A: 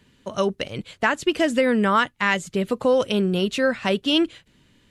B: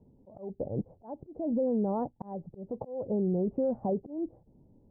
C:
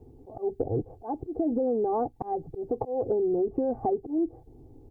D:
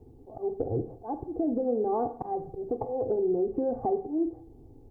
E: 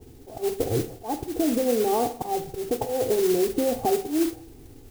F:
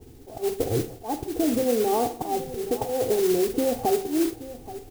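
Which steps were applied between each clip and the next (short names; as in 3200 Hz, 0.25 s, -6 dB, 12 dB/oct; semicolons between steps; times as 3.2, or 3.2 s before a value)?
Chebyshev low-pass 830 Hz, order 5; limiter -21.5 dBFS, peak gain reduction 11 dB; auto swell 0.293 s
comb 2.6 ms, depth 97%; compressor 5:1, threshold -32 dBFS, peak gain reduction 9 dB; gain +8 dB
Schroeder reverb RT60 0.55 s, combs from 33 ms, DRR 9 dB; gain -1.5 dB
modulation noise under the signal 13 dB; gain +4.5 dB
echo 0.827 s -15.5 dB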